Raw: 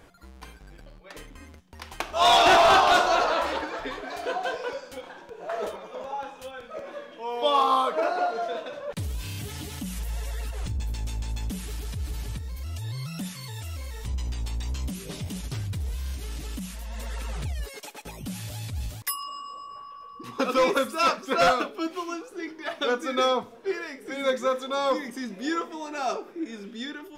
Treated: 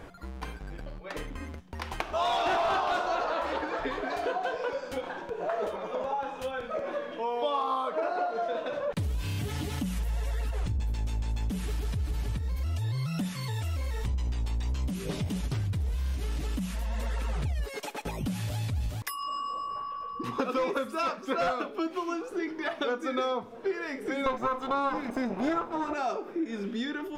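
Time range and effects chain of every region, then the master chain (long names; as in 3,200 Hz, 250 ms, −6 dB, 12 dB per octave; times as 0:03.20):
0:24.26–0:25.94: lower of the sound and its delayed copy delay 0.8 ms + parametric band 630 Hz +12.5 dB 2.6 octaves
whole clip: downward compressor 4 to 1, threshold −36 dBFS; high-shelf EQ 3,200 Hz −9.5 dB; level +7.5 dB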